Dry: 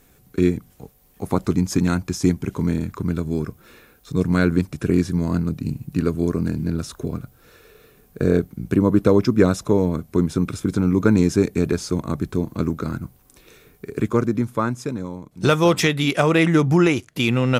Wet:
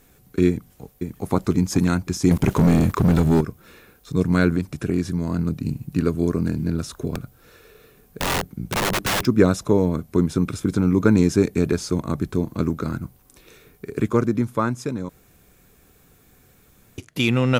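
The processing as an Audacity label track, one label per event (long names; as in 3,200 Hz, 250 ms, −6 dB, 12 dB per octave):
0.480000	1.310000	delay throw 530 ms, feedback 50%, level −5 dB
2.310000	3.410000	leveller curve on the samples passes 3
4.560000	5.390000	downward compressor 1.5 to 1, threshold −23 dBFS
7.140000	9.270000	wrap-around overflow gain 17 dB
15.090000	16.980000	fill with room tone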